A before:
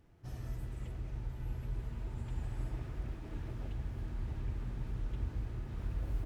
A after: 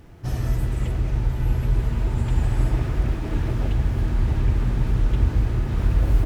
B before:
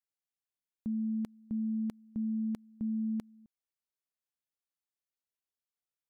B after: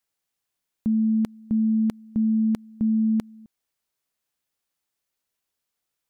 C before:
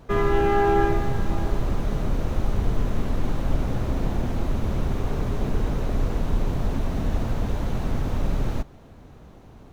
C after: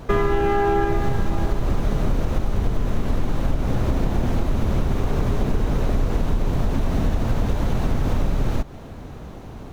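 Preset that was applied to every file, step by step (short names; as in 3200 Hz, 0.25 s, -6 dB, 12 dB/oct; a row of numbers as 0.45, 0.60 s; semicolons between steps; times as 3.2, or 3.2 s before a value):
compressor, threshold -26 dBFS; match loudness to -24 LUFS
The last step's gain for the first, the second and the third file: +18.0, +12.0, +10.0 dB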